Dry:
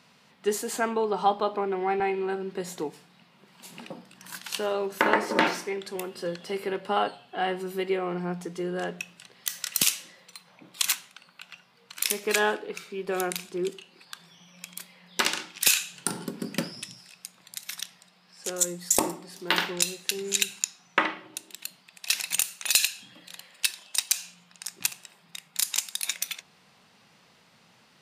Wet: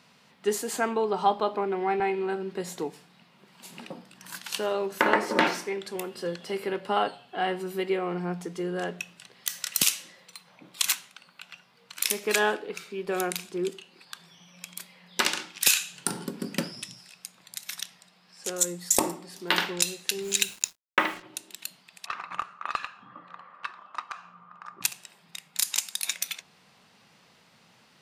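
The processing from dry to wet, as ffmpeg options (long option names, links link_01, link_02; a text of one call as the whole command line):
ffmpeg -i in.wav -filter_complex "[0:a]asettb=1/sr,asplit=3[link_01][link_02][link_03];[link_01]atrim=end=20.224[link_04];[link_02]atrim=start=20.22:end=21.23,asetpts=PTS-STARTPTS,afade=type=in:duration=0.004:curve=qsin,afade=type=out:start_time=1.006:duration=0.004:curve=qsin,acrusher=bits=6:mix=0:aa=0.5[link_05];[link_03]atrim=start=21.226[link_06];[link_04][link_05]acrossfade=duration=0.004:curve1=hsin:curve2=qsin[link_07];[link_07][link_06]acrossfade=duration=0.004:curve1=qsin:curve2=hsin,asplit=3[link_08][link_09][link_10];[link_08]afade=type=out:start_time=22.05:duration=0.02[link_11];[link_09]lowpass=frequency=1200:width_type=q:width=12,afade=type=in:start_time=22.05:duration=0.02,afade=type=out:start_time=24.81:duration=0.02[link_12];[link_10]afade=type=in:start_time=24.81:duration=0.02[link_13];[link_11][link_12][link_13]amix=inputs=3:normalize=0" out.wav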